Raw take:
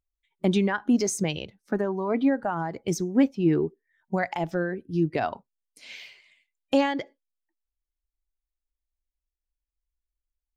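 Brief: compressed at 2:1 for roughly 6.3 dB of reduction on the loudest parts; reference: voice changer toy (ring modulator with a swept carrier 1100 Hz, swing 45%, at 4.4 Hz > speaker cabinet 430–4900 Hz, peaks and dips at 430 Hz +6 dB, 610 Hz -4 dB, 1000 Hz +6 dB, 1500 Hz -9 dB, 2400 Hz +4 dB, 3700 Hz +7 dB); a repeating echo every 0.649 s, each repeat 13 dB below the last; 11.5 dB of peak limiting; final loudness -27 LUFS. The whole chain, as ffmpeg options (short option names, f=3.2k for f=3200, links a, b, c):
-af "acompressor=threshold=-28dB:ratio=2,alimiter=level_in=3dB:limit=-24dB:level=0:latency=1,volume=-3dB,aecho=1:1:649|1298|1947:0.224|0.0493|0.0108,aeval=exprs='val(0)*sin(2*PI*1100*n/s+1100*0.45/4.4*sin(2*PI*4.4*n/s))':c=same,highpass=430,equalizer=f=430:t=q:w=4:g=6,equalizer=f=610:t=q:w=4:g=-4,equalizer=f=1k:t=q:w=4:g=6,equalizer=f=1.5k:t=q:w=4:g=-9,equalizer=f=2.4k:t=q:w=4:g=4,equalizer=f=3.7k:t=q:w=4:g=7,lowpass=f=4.9k:w=0.5412,lowpass=f=4.9k:w=1.3066,volume=11.5dB"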